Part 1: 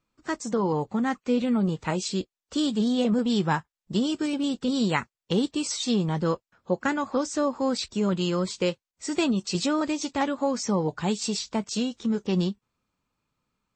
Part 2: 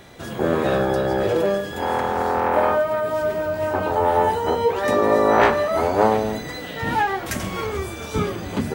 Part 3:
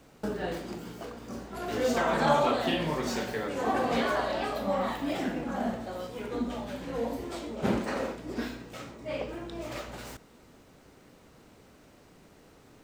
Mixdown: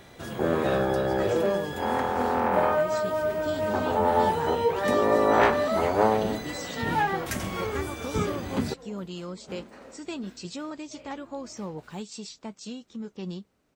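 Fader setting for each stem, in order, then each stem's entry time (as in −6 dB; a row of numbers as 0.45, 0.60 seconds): −11.0, −4.5, −15.5 decibels; 0.90, 0.00, 1.85 seconds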